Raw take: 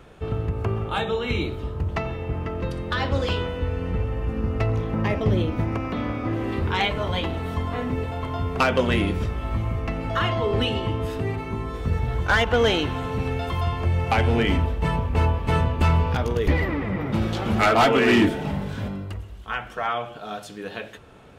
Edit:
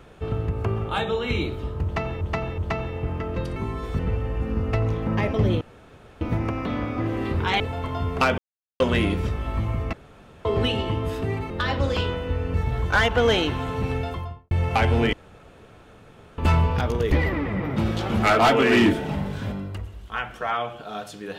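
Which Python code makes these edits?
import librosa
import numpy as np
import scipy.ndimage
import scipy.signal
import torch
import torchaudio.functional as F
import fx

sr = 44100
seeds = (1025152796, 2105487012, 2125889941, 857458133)

y = fx.studio_fade_out(x, sr, start_s=13.29, length_s=0.58)
y = fx.edit(y, sr, fx.repeat(start_s=1.84, length_s=0.37, count=3),
    fx.swap(start_s=2.82, length_s=1.04, other_s=11.47, other_length_s=0.43),
    fx.insert_room_tone(at_s=5.48, length_s=0.6),
    fx.cut(start_s=6.87, length_s=1.12),
    fx.insert_silence(at_s=8.77, length_s=0.42),
    fx.room_tone_fill(start_s=9.9, length_s=0.52),
    fx.room_tone_fill(start_s=14.49, length_s=1.25), tone=tone)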